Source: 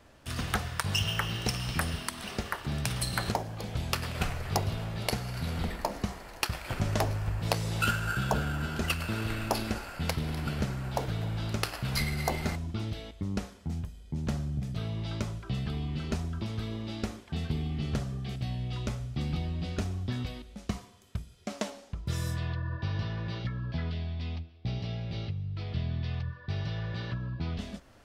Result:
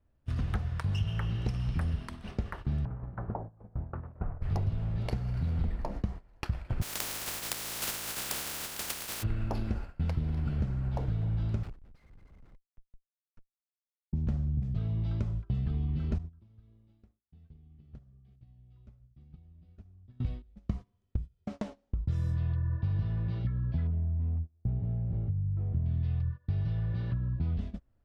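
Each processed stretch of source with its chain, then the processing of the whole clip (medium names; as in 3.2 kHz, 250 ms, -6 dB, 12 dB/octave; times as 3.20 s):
2.85–4.42 s: CVSD coder 32 kbps + low-pass 1.3 kHz 24 dB/octave + bass shelf 230 Hz -9 dB
6.81–9.22 s: spectral contrast reduction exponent 0.12 + RIAA curve recording
11.63–14.13 s: steep high-pass 1.2 kHz + Schmitt trigger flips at -36.5 dBFS
16.18–20.20 s: expander -29 dBFS + compression 5:1, threshold -40 dBFS
23.87–25.86 s: CVSD coder 32 kbps + low-pass 1 kHz
whole clip: gate -39 dBFS, range -19 dB; RIAA curve playback; compression 2:1, threshold -24 dBFS; trim -6 dB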